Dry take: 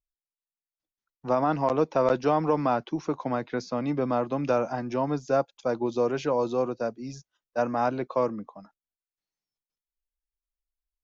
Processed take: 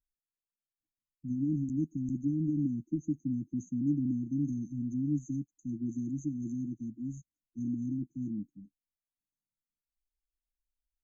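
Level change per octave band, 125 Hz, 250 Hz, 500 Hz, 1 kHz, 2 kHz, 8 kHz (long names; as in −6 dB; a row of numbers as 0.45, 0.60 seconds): 0.0 dB, −1.0 dB, below −25 dB, below −40 dB, below −40 dB, can't be measured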